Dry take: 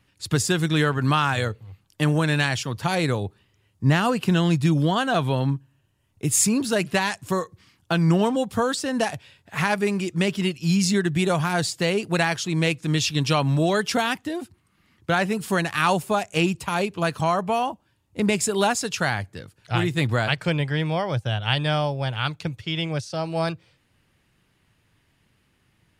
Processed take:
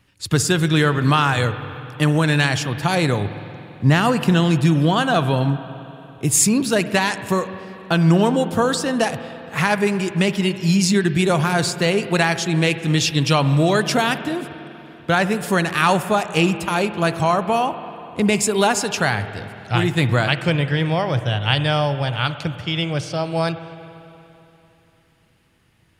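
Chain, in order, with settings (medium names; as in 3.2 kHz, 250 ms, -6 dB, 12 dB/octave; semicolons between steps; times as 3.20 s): spring tank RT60 3.2 s, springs 48/57 ms, chirp 80 ms, DRR 11 dB; trim +4 dB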